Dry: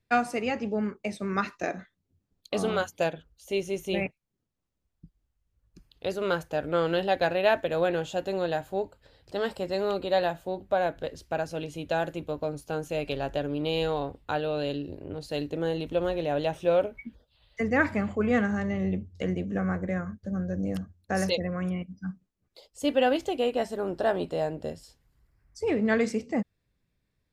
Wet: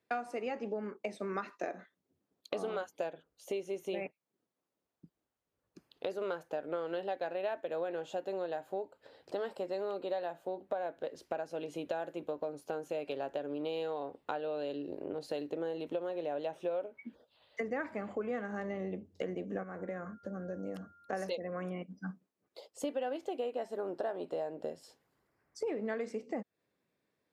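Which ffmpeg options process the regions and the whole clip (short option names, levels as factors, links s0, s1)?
-filter_complex "[0:a]asettb=1/sr,asplit=3[s0][s1][s2];[s0]atrim=end=19.634[s3];[s1]atrim=start=19.63:end=21.13,asetpts=PTS-STARTPTS,afade=t=in:d=0.004:c=qsin,afade=t=out:st=1.496:d=0.004:c=qsin,acompressor=threshold=0.0141:ratio=2.5:attack=3.2:release=140:knee=1:detection=peak,aeval=exprs='val(0)+0.000891*sin(2*PI*1400*n/s)':c=same[s4];[s2]atrim=start=21.126[s5];[s3][s4]acrossfade=d=0.004:c1=hsin:c2=qsin[s6];[s6][s5]acrossfade=d=0.004:c1=qsin:c2=hsin,highpass=360,tiltshelf=f=1500:g=5.5,acompressor=threshold=0.0158:ratio=5,volume=1.12"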